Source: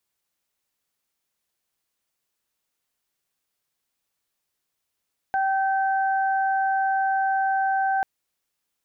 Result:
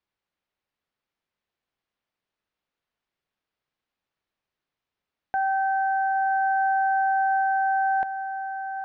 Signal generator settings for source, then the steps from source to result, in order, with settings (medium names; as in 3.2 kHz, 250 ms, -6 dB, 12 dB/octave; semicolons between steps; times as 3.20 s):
steady additive tone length 2.69 s, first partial 774 Hz, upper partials -7 dB, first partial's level -20.5 dB
distance through air 240 m; on a send: echo that smears into a reverb 999 ms, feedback 55%, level -10 dB